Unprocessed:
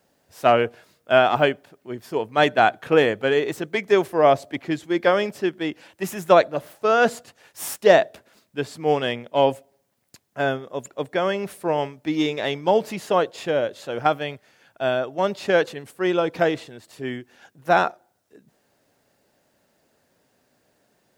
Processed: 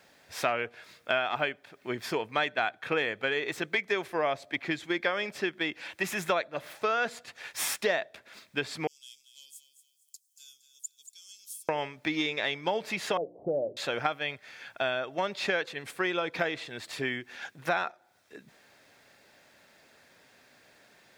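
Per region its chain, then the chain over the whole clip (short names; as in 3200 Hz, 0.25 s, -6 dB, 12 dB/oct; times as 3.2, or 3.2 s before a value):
8.87–11.69 inverse Chebyshev high-pass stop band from 2000 Hz, stop band 60 dB + feedback echo 0.232 s, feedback 35%, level -11 dB
13.17–13.77 steep low-pass 730 Hz 48 dB/oct + notches 60/120/180/240/300/360 Hz
whole clip: bell 2500 Hz +13.5 dB 2.4 oct; notch 2900 Hz, Q 9.9; compressor 4:1, threshold -29 dBFS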